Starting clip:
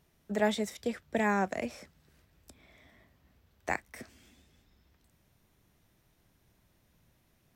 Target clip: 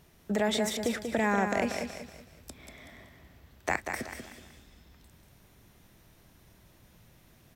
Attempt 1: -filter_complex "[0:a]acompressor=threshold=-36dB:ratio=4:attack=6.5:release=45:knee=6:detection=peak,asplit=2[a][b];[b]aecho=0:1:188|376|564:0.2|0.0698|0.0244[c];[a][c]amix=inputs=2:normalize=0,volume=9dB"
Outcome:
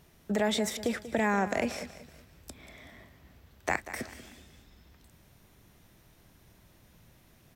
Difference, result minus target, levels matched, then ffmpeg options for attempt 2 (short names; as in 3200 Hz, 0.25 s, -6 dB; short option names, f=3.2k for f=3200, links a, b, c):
echo-to-direct -7.5 dB
-filter_complex "[0:a]acompressor=threshold=-36dB:ratio=4:attack=6.5:release=45:knee=6:detection=peak,asplit=2[a][b];[b]aecho=0:1:188|376|564|752:0.473|0.166|0.058|0.0203[c];[a][c]amix=inputs=2:normalize=0,volume=9dB"